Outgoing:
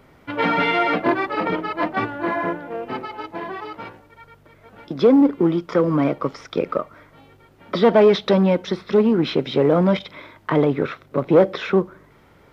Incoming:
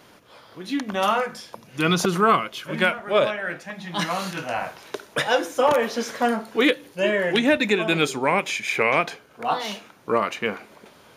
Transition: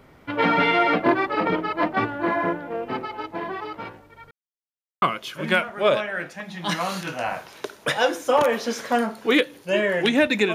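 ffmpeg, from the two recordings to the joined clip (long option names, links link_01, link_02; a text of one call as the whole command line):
ffmpeg -i cue0.wav -i cue1.wav -filter_complex "[0:a]apad=whole_dur=10.54,atrim=end=10.54,asplit=2[link_01][link_02];[link_01]atrim=end=4.31,asetpts=PTS-STARTPTS,afade=type=out:start_time=4.306:duration=0.004:curve=hsin[link_03];[link_02]atrim=start=4.31:end=5.02,asetpts=PTS-STARTPTS,volume=0[link_04];[1:a]atrim=start=2.32:end=7.84,asetpts=PTS-STARTPTS,afade=type=in:duration=0.004:curve=hsin[link_05];[link_03][link_04][link_05]concat=n=3:v=0:a=1" out.wav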